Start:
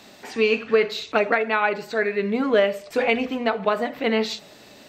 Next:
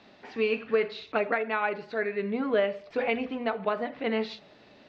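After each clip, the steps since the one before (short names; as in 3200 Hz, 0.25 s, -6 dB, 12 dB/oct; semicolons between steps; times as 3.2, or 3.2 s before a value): Bessel low-pass 3200 Hz, order 6; gain -6.5 dB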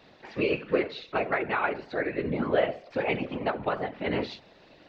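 whisperiser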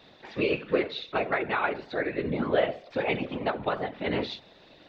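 bell 3600 Hz +8.5 dB 0.22 oct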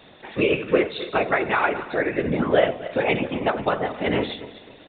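regenerating reverse delay 0.131 s, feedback 53%, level -13.5 dB; downsampling 8000 Hz; gain +6 dB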